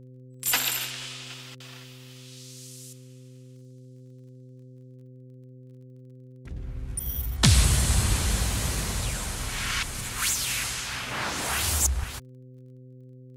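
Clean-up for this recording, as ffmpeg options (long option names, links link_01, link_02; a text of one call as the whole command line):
ffmpeg -i in.wav -af "adeclick=threshold=4,bandreject=frequency=127.7:width_type=h:width=4,bandreject=frequency=255.4:width_type=h:width=4,bandreject=frequency=383.1:width_type=h:width=4,bandreject=frequency=510.8:width_type=h:width=4" out.wav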